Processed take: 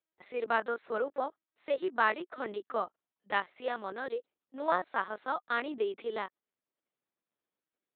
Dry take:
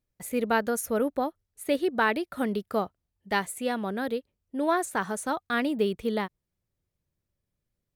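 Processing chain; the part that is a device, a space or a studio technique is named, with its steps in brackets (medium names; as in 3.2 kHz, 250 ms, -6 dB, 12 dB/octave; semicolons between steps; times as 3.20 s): talking toy (LPC vocoder at 8 kHz pitch kept; high-pass 390 Hz 12 dB/octave; peaking EQ 1.2 kHz +4.5 dB 0.58 oct); trim -3.5 dB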